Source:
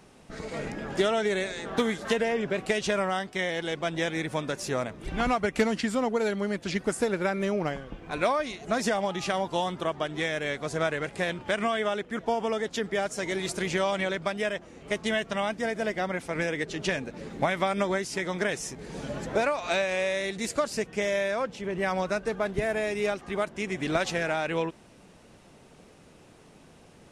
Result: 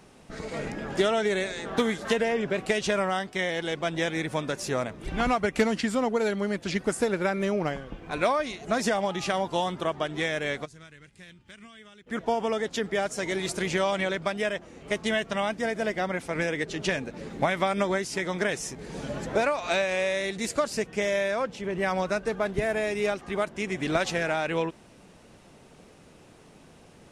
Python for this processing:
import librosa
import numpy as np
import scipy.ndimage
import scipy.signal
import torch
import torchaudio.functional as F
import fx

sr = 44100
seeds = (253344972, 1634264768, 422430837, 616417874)

y = fx.tone_stack(x, sr, knobs='6-0-2', at=(10.64, 12.06), fade=0.02)
y = F.gain(torch.from_numpy(y), 1.0).numpy()